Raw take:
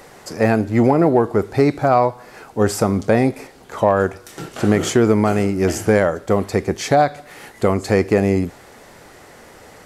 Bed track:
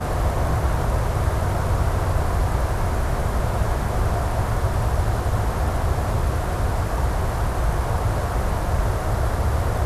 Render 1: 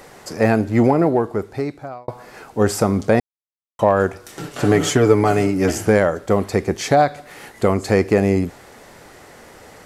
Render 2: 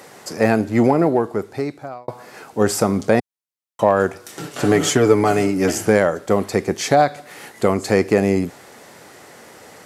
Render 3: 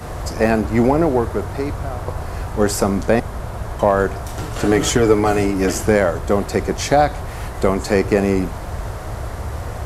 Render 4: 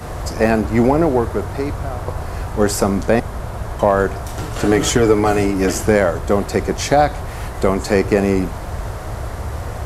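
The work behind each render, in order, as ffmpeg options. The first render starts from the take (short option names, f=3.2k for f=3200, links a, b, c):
-filter_complex "[0:a]asettb=1/sr,asplit=3[a][b][c];[a]atrim=end=4.434[d];[b]atrim=start=4.43:end=5.71,asetpts=PTS-STARTPTS,afade=t=in:d=0.004:c=qsin,afade=t=out:st=1.276:d=0.004:c=qsin,aecho=1:1:6.9:0.65,atrim=end_sample=56448[e];[c]atrim=start=5.706[f];[d][e]acrossfade=d=0.004:c1=hsin:c2=qsin[g];[g][f]acrossfade=d=0.004:c1=qsin:c2=hsin,asplit=4[h][i][j][k];[h]atrim=end=2.08,asetpts=PTS-STARTPTS,afade=t=out:st=0.81:d=1.27[l];[i]atrim=start=2.08:end=3.2,asetpts=PTS-STARTPTS,afade=t=in:d=0.004:c=hsin,afade=t=out:st=1.116:d=0.004:c=hsin[m];[j]atrim=start=3.2:end=3.79,asetpts=PTS-STARTPTS,volume=0[n];[k]atrim=start=3.79,asetpts=PTS-STARTPTS,afade=t=in:d=0.004:c=hsin[o];[l][m][n][o]concat=n=4:v=0:a=1"
-af "highpass=120,equalizer=f=9.8k:w=0.33:g=3"
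-filter_complex "[1:a]volume=-5.5dB[a];[0:a][a]amix=inputs=2:normalize=0"
-af "volume=1dB,alimiter=limit=-2dB:level=0:latency=1"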